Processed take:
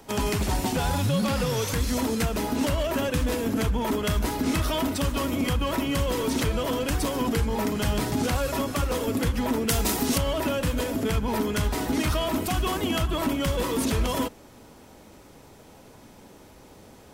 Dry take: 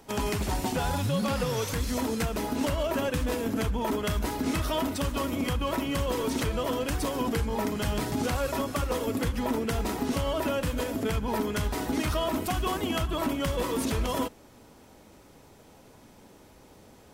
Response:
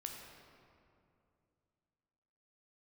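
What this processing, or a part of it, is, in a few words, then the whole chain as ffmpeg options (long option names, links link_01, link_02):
one-band saturation: -filter_complex "[0:a]asettb=1/sr,asplit=3[link_01][link_02][link_03];[link_01]atrim=end=9.684[link_04];[link_02]atrim=start=9.68:end=10.18,asetpts=PTS-STARTPTS,afade=type=in:duration=0.004:curve=qsin,afade=type=out:start_time=0.496:duration=0.004:curve=qsin,highshelf=frequency=3700:gain=11.5[link_05];[link_03]atrim=start=10.176[link_06];[link_04][link_05]acrossfade=duration=0.004:curve1=hsin:curve2=qsin[link_07];[link_07][link_06]acrossfade=duration=0.004:curve1=qsin:curve2=hsin,acrossover=split=290|2100[link_08][link_09][link_10];[link_09]asoftclip=type=tanh:threshold=-28.5dB[link_11];[link_08][link_11][link_10]amix=inputs=3:normalize=0,volume=4dB"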